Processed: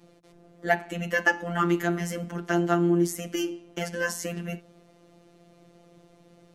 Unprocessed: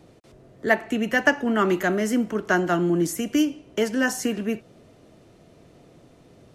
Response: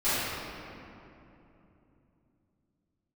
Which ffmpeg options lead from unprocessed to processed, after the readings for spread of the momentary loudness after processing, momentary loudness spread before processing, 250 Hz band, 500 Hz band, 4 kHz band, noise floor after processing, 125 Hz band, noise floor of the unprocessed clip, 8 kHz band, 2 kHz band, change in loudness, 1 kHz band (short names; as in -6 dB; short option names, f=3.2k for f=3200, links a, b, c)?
11 LU, 6 LU, -5.0 dB, -4.5 dB, -4.5 dB, -58 dBFS, +1.0 dB, -54 dBFS, -3.5 dB, -3.5 dB, -4.0 dB, -2.5 dB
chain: -af "bandreject=f=50:t=h:w=6,bandreject=f=100:t=h:w=6,bandreject=f=150:t=h:w=6,bandreject=f=200:t=h:w=6,bandreject=f=250:t=h:w=6,bandreject=f=300:t=h:w=6,adynamicequalizer=threshold=0.0158:dfrequency=590:dqfactor=3.3:tfrequency=590:tqfactor=3.3:attack=5:release=100:ratio=0.375:range=1.5:mode=cutabove:tftype=bell,afftfilt=real='hypot(re,im)*cos(PI*b)':imag='0':win_size=1024:overlap=0.75"